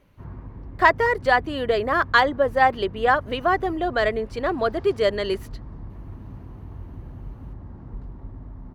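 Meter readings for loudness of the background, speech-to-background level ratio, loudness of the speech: −40.0 LKFS, 18.5 dB, −21.5 LKFS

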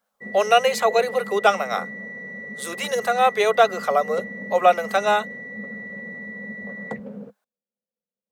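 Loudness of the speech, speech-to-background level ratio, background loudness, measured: −21.0 LKFS, 12.5 dB, −33.5 LKFS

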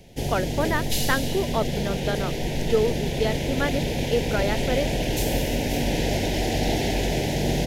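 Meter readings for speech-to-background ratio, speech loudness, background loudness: −2.0 dB, −28.0 LKFS, −26.0 LKFS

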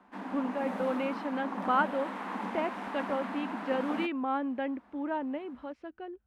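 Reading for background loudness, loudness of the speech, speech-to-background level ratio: −38.0 LKFS, −34.0 LKFS, 4.0 dB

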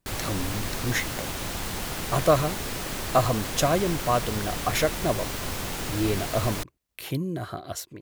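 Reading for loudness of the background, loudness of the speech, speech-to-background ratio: −31.5 LKFS, −27.5 LKFS, 4.0 dB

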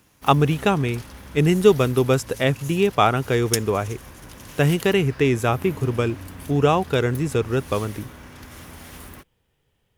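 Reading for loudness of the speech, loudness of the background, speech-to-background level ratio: −21.0 LKFS, −37.5 LKFS, 16.5 dB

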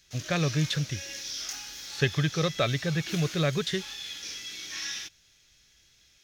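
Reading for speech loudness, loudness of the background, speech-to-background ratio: −28.5 LKFS, −37.0 LKFS, 8.5 dB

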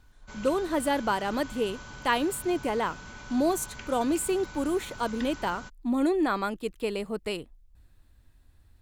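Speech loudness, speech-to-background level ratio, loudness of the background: −29.0 LKFS, 15.0 dB, −44.0 LKFS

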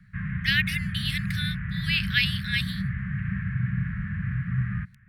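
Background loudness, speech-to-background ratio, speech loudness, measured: −30.5 LKFS, 3.0 dB, −27.5 LKFS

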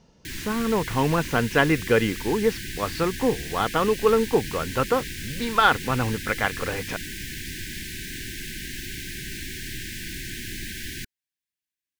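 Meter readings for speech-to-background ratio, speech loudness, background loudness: 9.5 dB, −24.0 LKFS, −33.5 LKFS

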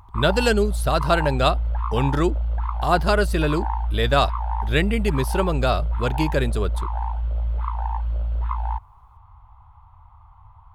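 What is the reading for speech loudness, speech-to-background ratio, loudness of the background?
−23.0 LKFS, 4.0 dB, −27.0 LKFS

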